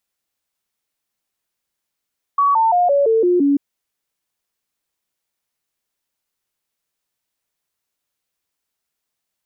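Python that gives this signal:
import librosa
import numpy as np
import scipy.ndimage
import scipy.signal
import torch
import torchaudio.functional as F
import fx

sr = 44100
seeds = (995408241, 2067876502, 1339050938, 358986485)

y = fx.stepped_sweep(sr, from_hz=1130.0, direction='down', per_octave=3, tones=7, dwell_s=0.17, gap_s=0.0, level_db=-11.5)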